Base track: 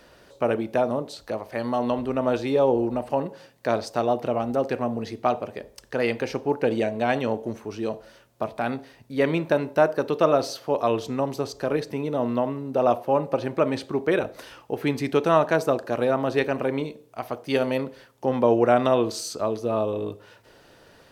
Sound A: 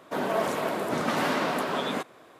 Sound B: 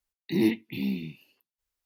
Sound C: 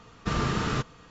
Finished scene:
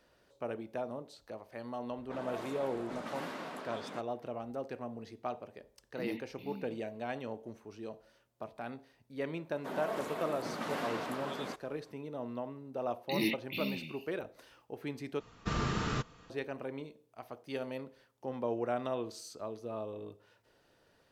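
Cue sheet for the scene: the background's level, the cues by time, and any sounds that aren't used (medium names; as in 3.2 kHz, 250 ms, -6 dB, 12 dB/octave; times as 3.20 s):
base track -15.5 dB
1.98 s: add A -15.5 dB + level-controlled noise filter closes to 1.9 kHz, open at -22.5 dBFS
5.66 s: add B -16.5 dB
9.53 s: add A -11.5 dB
12.80 s: add B -9.5 dB + resonant high shelf 1.7 kHz +9.5 dB, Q 1.5
15.20 s: replace with C -6 dB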